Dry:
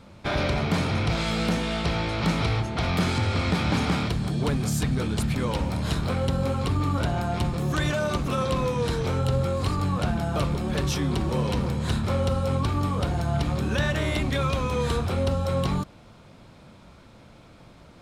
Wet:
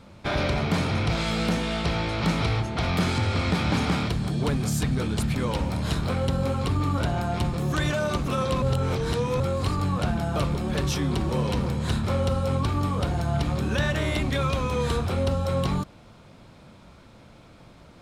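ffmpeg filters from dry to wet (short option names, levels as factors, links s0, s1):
-filter_complex "[0:a]asplit=3[s0][s1][s2];[s0]atrim=end=8.622[s3];[s1]atrim=start=8.618:end=9.402,asetpts=PTS-STARTPTS,areverse[s4];[s2]atrim=start=9.398[s5];[s3][s4]acrossfade=d=0.004:c1=hsin:c2=hsin[s6];[s6][s5]acrossfade=d=0.004:c1=hsin:c2=hsin"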